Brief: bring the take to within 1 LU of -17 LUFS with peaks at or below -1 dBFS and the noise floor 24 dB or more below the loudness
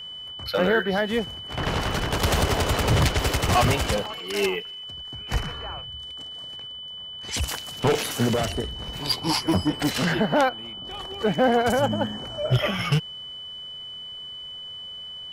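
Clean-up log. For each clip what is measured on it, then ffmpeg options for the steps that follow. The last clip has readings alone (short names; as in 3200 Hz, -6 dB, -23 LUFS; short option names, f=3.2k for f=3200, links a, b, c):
steady tone 3000 Hz; tone level -35 dBFS; loudness -25.5 LUFS; peak -9.0 dBFS; loudness target -17.0 LUFS
-> -af "bandreject=f=3k:w=30"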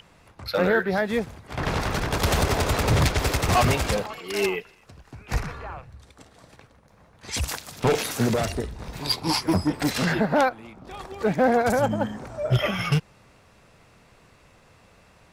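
steady tone none; loudness -24.5 LUFS; peak -9.5 dBFS; loudness target -17.0 LUFS
-> -af "volume=7.5dB"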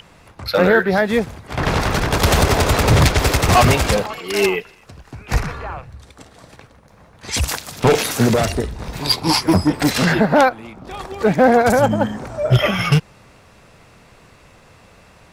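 loudness -17.0 LUFS; peak -2.0 dBFS; noise floor -49 dBFS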